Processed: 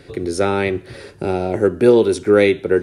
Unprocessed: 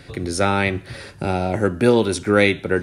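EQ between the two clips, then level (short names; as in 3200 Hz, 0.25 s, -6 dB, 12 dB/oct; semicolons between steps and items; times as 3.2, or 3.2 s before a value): bell 400 Hz +10.5 dB 0.8 oct; -3.0 dB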